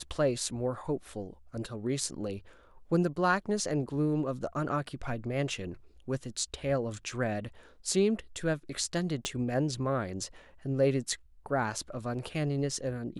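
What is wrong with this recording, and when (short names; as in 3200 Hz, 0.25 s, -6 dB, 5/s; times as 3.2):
9.25 pop -17 dBFS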